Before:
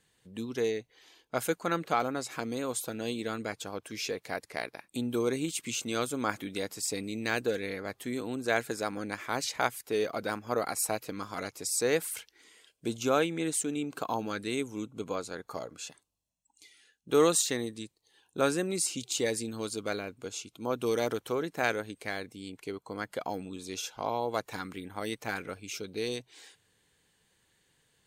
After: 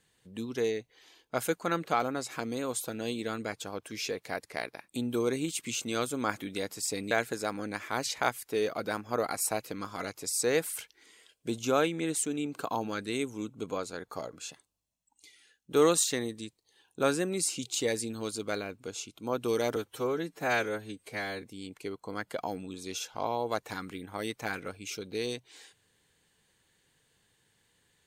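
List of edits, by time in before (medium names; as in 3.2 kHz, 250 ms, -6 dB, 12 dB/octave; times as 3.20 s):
7.11–8.49 s: delete
21.14–22.25 s: stretch 1.5×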